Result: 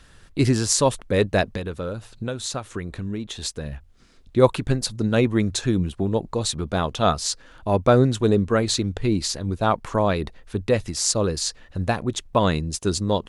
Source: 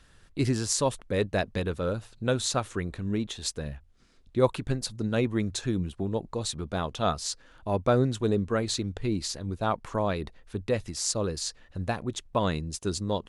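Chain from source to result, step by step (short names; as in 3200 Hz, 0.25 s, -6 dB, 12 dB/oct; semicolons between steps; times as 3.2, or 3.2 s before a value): 1.5–3.73 compressor 4:1, threshold -34 dBFS, peak gain reduction 11.5 dB; gain +7 dB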